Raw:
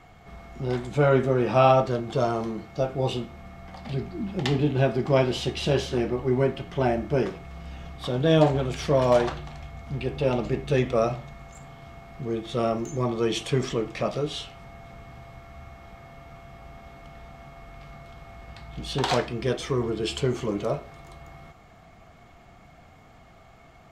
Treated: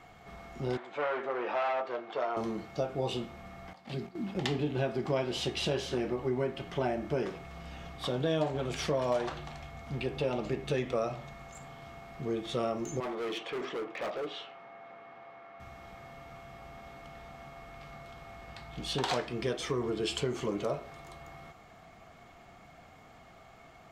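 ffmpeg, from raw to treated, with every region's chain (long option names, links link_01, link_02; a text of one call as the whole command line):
ffmpeg -i in.wav -filter_complex "[0:a]asettb=1/sr,asplit=3[link_01][link_02][link_03];[link_01]atrim=end=0.774[link_04];[link_02]atrim=start=0.77:end=2.37,asetpts=PTS-STARTPTS,afade=type=in:duration=0.004:curve=qsin,afade=type=out:start_time=1.596:duration=0.004:curve=qsin,asoftclip=type=hard:threshold=-19.5dB,highpass=570,lowpass=2500[link_05];[link_03]atrim=start=2.366[link_06];[link_04][link_05]acrossfade=duration=0.004:curve1=hsin:curve2=qsin[link_07];[link_07][link_06]acrossfade=duration=0.004:curve1=qsin:curve2=hsin,asettb=1/sr,asplit=3[link_08][link_09][link_10];[link_08]atrim=end=3.734[link_11];[link_09]atrim=start=3.73:end=4.35,asetpts=PTS-STARTPTS,afade=type=in:duration=0.004:curve=qsin,afade=type=out:start_time=0.616:duration=0.004:curve=qsin,agate=range=-12dB:threshold=-37dB:ratio=16:release=100:detection=peak,acrossover=split=310|3000[link_12][link_13][link_14];[link_13]acompressor=threshold=-38dB:ratio=6:attack=3.2:release=140:knee=2.83:detection=peak[link_15];[link_12][link_15][link_14]amix=inputs=3:normalize=0,highpass=140[link_16];[link_10]atrim=start=4.346[link_17];[link_11][link_16]acrossfade=duration=0.004:curve1=hsin:curve2=qsin[link_18];[link_18][link_17]acrossfade=duration=0.004:curve1=qsin:curve2=hsin,asettb=1/sr,asplit=3[link_19][link_20][link_21];[link_19]atrim=end=13.004[link_22];[link_20]atrim=start=13:end=15.6,asetpts=PTS-STARTPTS,afade=type=in:duration=0.004:curve=qsin,afade=type=out:start_time=2.596:duration=0.004:curve=qsin,highpass=340,lowpass=2300,volume=30.5dB,asoftclip=hard,volume=-30.5dB[link_23];[link_21]atrim=start=15.596[link_24];[link_22][link_23]acrossfade=duration=0.004:curve1=hsin:curve2=qsin[link_25];[link_25][link_24]acrossfade=duration=0.004:curve1=qsin:curve2=hsin,lowshelf=frequency=150:gain=-8.5,acompressor=threshold=-28dB:ratio=3,volume=-1dB" out.wav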